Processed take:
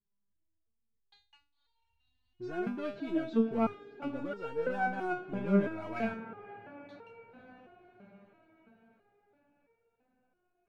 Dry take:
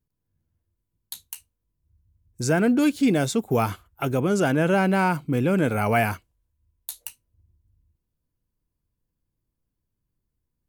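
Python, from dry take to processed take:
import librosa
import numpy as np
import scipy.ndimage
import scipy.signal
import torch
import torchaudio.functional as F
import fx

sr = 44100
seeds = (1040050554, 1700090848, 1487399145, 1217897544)

p1 = scipy.signal.sosfilt(scipy.signal.butter(4, 3900.0, 'lowpass', fs=sr, output='sos'), x)
p2 = fx.high_shelf(p1, sr, hz=3000.0, db=-12.0)
p3 = fx.echo_diffused(p2, sr, ms=546, feedback_pct=57, wet_db=-13.5)
p4 = np.clip(10.0 ** (23.5 / 20.0) * p3, -1.0, 1.0) / 10.0 ** (23.5 / 20.0)
p5 = p3 + (p4 * 10.0 ** (-3.5 / 20.0))
y = fx.resonator_held(p5, sr, hz=3.0, low_hz=200.0, high_hz=460.0)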